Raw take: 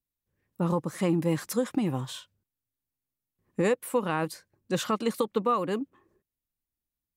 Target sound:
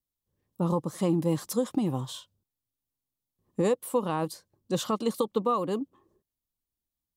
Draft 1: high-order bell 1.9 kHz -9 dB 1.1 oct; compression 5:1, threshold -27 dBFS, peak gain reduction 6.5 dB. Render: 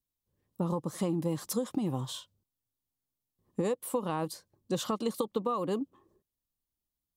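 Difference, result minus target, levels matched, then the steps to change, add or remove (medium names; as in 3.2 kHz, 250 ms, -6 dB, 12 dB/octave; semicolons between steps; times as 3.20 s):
compression: peak gain reduction +6.5 dB
remove: compression 5:1, threshold -27 dBFS, peak gain reduction 6.5 dB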